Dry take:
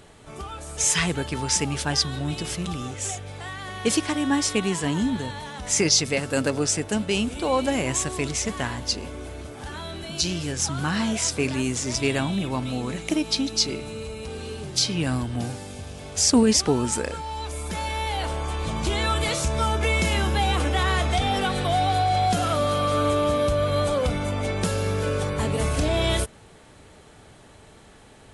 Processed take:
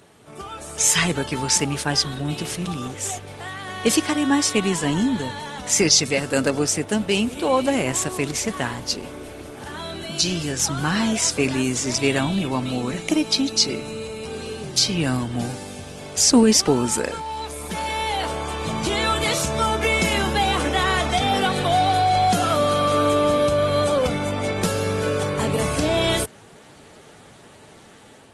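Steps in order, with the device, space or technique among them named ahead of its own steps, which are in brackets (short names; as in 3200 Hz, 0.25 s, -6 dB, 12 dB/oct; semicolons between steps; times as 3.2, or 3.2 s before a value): video call (HPF 120 Hz 12 dB/oct; AGC gain up to 4 dB; Opus 20 kbps 48000 Hz)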